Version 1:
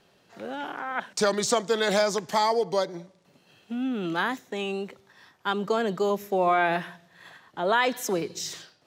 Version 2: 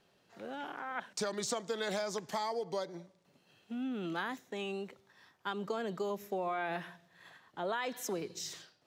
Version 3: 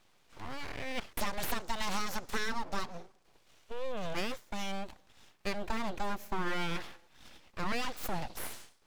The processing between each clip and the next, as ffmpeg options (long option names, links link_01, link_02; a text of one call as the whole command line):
ffmpeg -i in.wav -af "acompressor=threshold=-24dB:ratio=6,volume=-8dB" out.wav
ffmpeg -i in.wav -af "aeval=exprs='abs(val(0))':channel_layout=same,volume=4.5dB" out.wav